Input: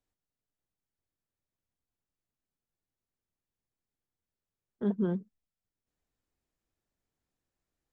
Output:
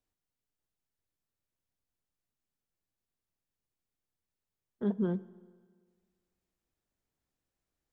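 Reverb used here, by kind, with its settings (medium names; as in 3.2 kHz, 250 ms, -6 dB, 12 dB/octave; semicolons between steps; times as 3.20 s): spring tank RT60 1.7 s, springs 31/56 ms, chirp 35 ms, DRR 18 dB; trim -1 dB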